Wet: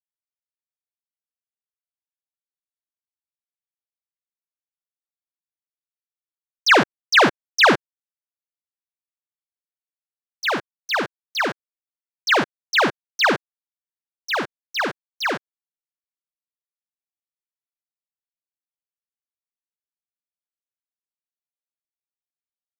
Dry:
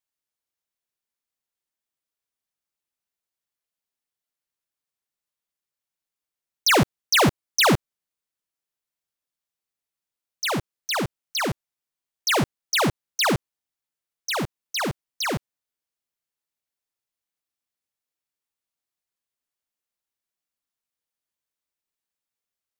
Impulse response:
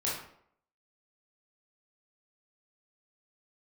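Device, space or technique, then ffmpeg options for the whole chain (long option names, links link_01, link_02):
pocket radio on a weak battery: -af "highpass=270,lowpass=4400,aeval=exprs='sgn(val(0))*max(abs(val(0))-0.0112,0)':channel_layout=same,equalizer=frequency=1600:width_type=o:width=0.31:gain=7,volume=4.5dB"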